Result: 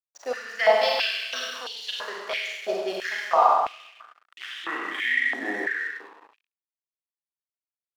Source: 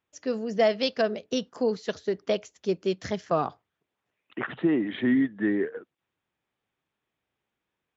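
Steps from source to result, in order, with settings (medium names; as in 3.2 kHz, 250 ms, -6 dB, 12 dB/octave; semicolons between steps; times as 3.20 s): Schroeder reverb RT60 1.5 s, combs from 32 ms, DRR -4 dB; hysteresis with a dead band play -38.5 dBFS; step-sequenced high-pass 3 Hz 720–3200 Hz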